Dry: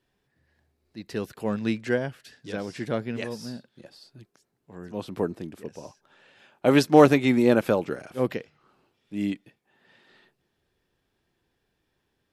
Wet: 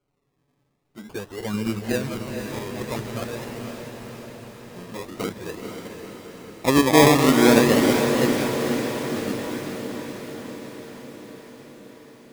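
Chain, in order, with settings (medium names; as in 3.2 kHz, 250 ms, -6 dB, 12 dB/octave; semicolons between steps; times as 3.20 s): backward echo that repeats 128 ms, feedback 51%, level -3 dB; touch-sensitive flanger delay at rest 7.1 ms, full sweep at -18 dBFS; decimation with a swept rate 24×, swing 60% 0.47 Hz; on a send: echo that smears into a reverb 484 ms, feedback 67%, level -6 dB; on the sum: trim +1 dB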